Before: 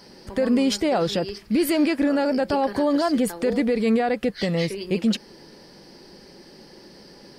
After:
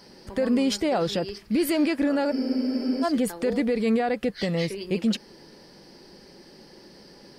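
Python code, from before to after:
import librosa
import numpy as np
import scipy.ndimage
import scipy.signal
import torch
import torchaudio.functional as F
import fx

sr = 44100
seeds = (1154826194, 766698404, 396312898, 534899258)

y = fx.spec_freeze(x, sr, seeds[0], at_s=2.35, hold_s=0.69)
y = y * librosa.db_to_amplitude(-2.5)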